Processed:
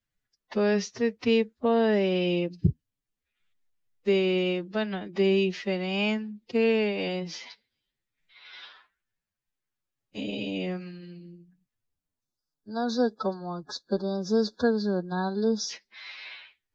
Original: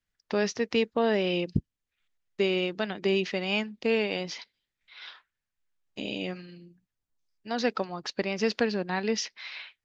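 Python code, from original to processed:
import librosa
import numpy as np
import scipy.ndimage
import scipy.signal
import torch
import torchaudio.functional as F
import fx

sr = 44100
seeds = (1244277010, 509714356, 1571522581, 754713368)

y = fx.low_shelf(x, sr, hz=470.0, db=6.0)
y = fx.spec_erase(y, sr, start_s=7.2, length_s=2.03, low_hz=1700.0, high_hz=3400.0)
y = fx.stretch_vocoder(y, sr, factor=1.7)
y = y * librosa.db_to_amplitude(-1.5)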